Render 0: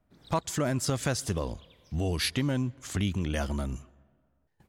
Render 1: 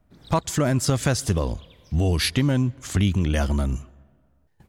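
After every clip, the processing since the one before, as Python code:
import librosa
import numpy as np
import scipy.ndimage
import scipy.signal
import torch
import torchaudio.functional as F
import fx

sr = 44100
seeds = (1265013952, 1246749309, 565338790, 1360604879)

y = fx.low_shelf(x, sr, hz=150.0, db=5.5)
y = F.gain(torch.from_numpy(y), 5.5).numpy()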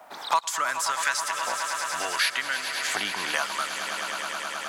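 y = fx.filter_lfo_highpass(x, sr, shape='saw_up', hz=0.68, low_hz=780.0, high_hz=2200.0, q=3.0)
y = fx.echo_swell(y, sr, ms=106, loudest=5, wet_db=-15)
y = fx.band_squash(y, sr, depth_pct=70)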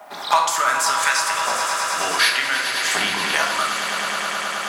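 y = fx.room_shoebox(x, sr, seeds[0], volume_m3=470.0, walls='mixed', distance_m=1.3)
y = F.gain(torch.from_numpy(y), 5.0).numpy()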